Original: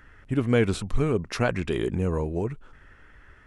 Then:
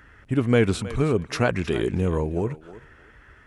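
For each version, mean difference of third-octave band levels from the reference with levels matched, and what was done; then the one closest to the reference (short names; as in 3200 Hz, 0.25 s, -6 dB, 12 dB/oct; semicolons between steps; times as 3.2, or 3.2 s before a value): 1.5 dB: HPF 41 Hz; on a send: thinning echo 0.316 s, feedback 19%, high-pass 330 Hz, level -15 dB; on the sum: gain +2.5 dB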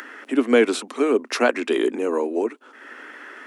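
7.5 dB: steep high-pass 240 Hz 72 dB/oct; upward compressor, threshold -37 dBFS; gain +7 dB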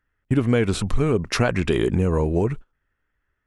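4.5 dB: compressor 4:1, threshold -25 dBFS, peak gain reduction 8.5 dB; gate -39 dBFS, range -32 dB; gain +9 dB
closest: first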